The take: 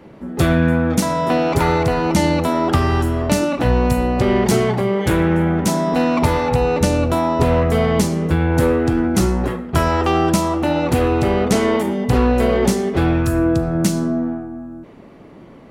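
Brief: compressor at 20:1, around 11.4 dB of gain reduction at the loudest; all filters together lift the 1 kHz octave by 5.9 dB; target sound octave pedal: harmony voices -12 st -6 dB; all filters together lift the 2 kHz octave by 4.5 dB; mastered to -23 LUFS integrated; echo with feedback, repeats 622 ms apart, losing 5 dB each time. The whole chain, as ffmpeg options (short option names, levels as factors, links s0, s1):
-filter_complex "[0:a]equalizer=f=1000:t=o:g=6.5,equalizer=f=2000:t=o:g=3.5,acompressor=threshold=0.0891:ratio=20,aecho=1:1:622|1244|1866|2488|3110|3732|4354:0.562|0.315|0.176|0.0988|0.0553|0.031|0.0173,asplit=2[s0][s1];[s1]asetrate=22050,aresample=44100,atempo=2,volume=0.501[s2];[s0][s2]amix=inputs=2:normalize=0,volume=1.06"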